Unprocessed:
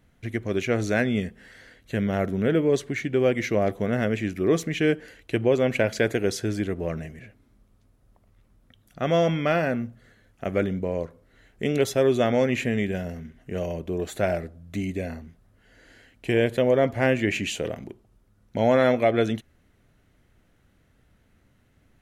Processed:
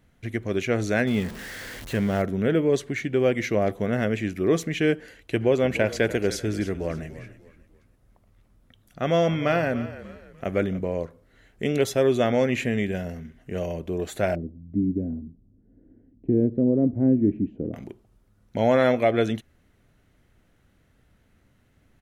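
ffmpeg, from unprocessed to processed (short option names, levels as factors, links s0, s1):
-filter_complex "[0:a]asettb=1/sr,asplit=3[s0][s1][s2];[s0]atrim=end=1.074[s3];[s1]atrim=start=1.07:end=2.22,asetpts=PTS-STARTPTS,afade=t=in:d=0.004:c=qsin,afade=t=out:st=1.146:d=0.004:c=qsin,aeval=exprs='val(0)+0.5*0.02*sgn(val(0))':c=same[s4];[s2]atrim=start=2.216[s5];[s3][s4]acrossfade=d=0.004:c1=hsin:c2=qsin[s6];[s6][s5]acrossfade=d=0.004:c1=qsin:c2=hsin,asplit=3[s7][s8][s9];[s7]afade=t=out:st=5.4:d=0.02[s10];[s8]asplit=4[s11][s12][s13][s14];[s12]adelay=295,afreqshift=-40,volume=0.178[s15];[s13]adelay=590,afreqshift=-80,volume=0.0603[s16];[s14]adelay=885,afreqshift=-120,volume=0.0207[s17];[s11][s15][s16][s17]amix=inputs=4:normalize=0,afade=t=in:st=5.4:d=0.02,afade=t=out:st=10.85:d=0.02[s18];[s9]afade=t=in:st=10.85:d=0.02[s19];[s10][s18][s19]amix=inputs=3:normalize=0,asplit=3[s20][s21][s22];[s20]afade=t=out:st=14.34:d=0.02[s23];[s21]lowpass=f=280:t=q:w=2.5,afade=t=in:st=14.34:d=0.02,afade=t=out:st=17.73:d=0.02[s24];[s22]afade=t=in:st=17.73:d=0.02[s25];[s23][s24][s25]amix=inputs=3:normalize=0"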